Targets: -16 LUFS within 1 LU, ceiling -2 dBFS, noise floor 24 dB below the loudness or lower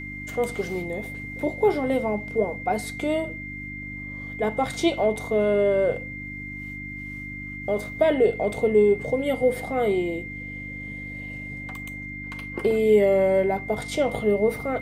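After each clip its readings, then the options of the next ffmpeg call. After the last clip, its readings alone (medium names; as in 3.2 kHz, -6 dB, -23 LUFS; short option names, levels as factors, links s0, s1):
hum 50 Hz; highest harmonic 300 Hz; hum level -36 dBFS; steady tone 2.1 kHz; tone level -35 dBFS; loudness -25.0 LUFS; peak level -8.0 dBFS; loudness target -16.0 LUFS
-> -af "bandreject=f=50:t=h:w=4,bandreject=f=100:t=h:w=4,bandreject=f=150:t=h:w=4,bandreject=f=200:t=h:w=4,bandreject=f=250:t=h:w=4,bandreject=f=300:t=h:w=4"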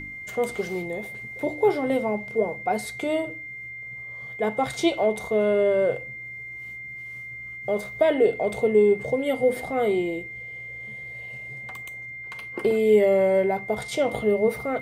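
hum not found; steady tone 2.1 kHz; tone level -35 dBFS
-> -af "bandreject=f=2100:w=30"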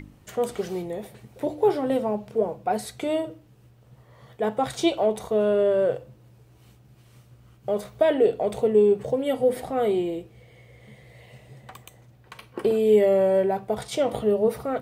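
steady tone not found; loudness -24.0 LUFS; peak level -8.5 dBFS; loudness target -16.0 LUFS
-> -af "volume=2.51,alimiter=limit=0.794:level=0:latency=1"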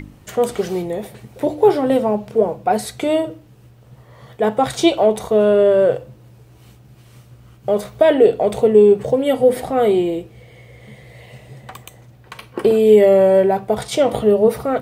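loudness -16.0 LUFS; peak level -2.0 dBFS; noise floor -47 dBFS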